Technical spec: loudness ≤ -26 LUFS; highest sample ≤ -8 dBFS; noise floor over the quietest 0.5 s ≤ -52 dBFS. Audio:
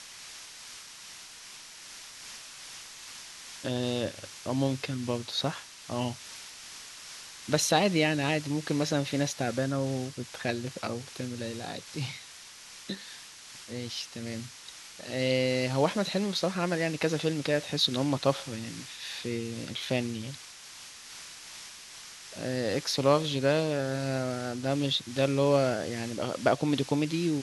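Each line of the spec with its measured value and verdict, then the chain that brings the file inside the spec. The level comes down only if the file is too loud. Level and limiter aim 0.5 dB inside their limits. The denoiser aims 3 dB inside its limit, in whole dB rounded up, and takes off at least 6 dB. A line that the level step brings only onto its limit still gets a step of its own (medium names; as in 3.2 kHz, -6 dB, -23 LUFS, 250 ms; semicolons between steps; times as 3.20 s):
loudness -30.0 LUFS: pass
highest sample -8.5 dBFS: pass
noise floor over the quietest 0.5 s -48 dBFS: fail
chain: noise reduction 7 dB, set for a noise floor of -48 dBFS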